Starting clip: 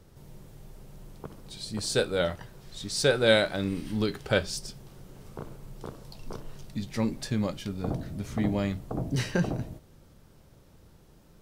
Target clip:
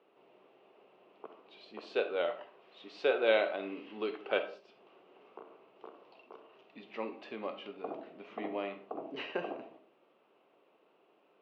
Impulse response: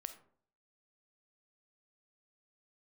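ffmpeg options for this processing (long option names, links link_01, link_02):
-filter_complex "[0:a]asplit=3[link_01][link_02][link_03];[link_01]afade=type=out:start_time=4.42:duration=0.02[link_04];[link_02]acompressor=threshold=-39dB:ratio=3,afade=type=in:start_time=4.42:duration=0.02,afade=type=out:start_time=6.72:duration=0.02[link_05];[link_03]afade=type=in:start_time=6.72:duration=0.02[link_06];[link_04][link_05][link_06]amix=inputs=3:normalize=0,highpass=frequency=310:width=0.5412,highpass=frequency=310:width=1.3066,equalizer=frequency=410:width_type=q:width=4:gain=4,equalizer=frequency=710:width_type=q:width=4:gain=6,equalizer=frequency=1100:width_type=q:width=4:gain=6,equalizer=frequency=1700:width_type=q:width=4:gain=-4,equalizer=frequency=2700:width_type=q:width=4:gain=10,lowpass=frequency=3000:width=0.5412,lowpass=frequency=3000:width=1.3066[link_07];[1:a]atrim=start_sample=2205,afade=type=out:start_time=0.27:duration=0.01,atrim=end_sample=12348[link_08];[link_07][link_08]afir=irnorm=-1:irlink=0,volume=-3.5dB"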